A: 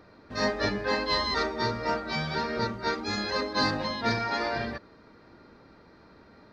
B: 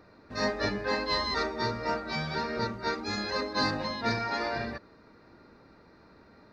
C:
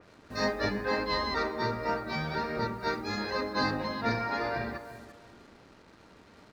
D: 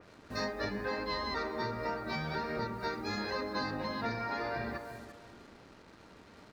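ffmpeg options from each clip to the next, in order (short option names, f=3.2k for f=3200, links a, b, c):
-af "bandreject=f=3.2k:w=9.7,volume=-2dB"
-filter_complex "[0:a]asplit=2[a][b];[b]adelay=342,lowpass=f=1.8k:p=1,volume=-12.5dB,asplit=2[c][d];[d]adelay=342,lowpass=f=1.8k:p=1,volume=0.28,asplit=2[e][f];[f]adelay=342,lowpass=f=1.8k:p=1,volume=0.28[g];[a][c][e][g]amix=inputs=4:normalize=0,acrusher=bits=8:mix=0:aa=0.5,adynamicequalizer=threshold=0.00501:dfrequency=3200:dqfactor=0.7:tfrequency=3200:tqfactor=0.7:attack=5:release=100:ratio=0.375:range=3.5:mode=cutabove:tftype=highshelf"
-af "acompressor=threshold=-32dB:ratio=6"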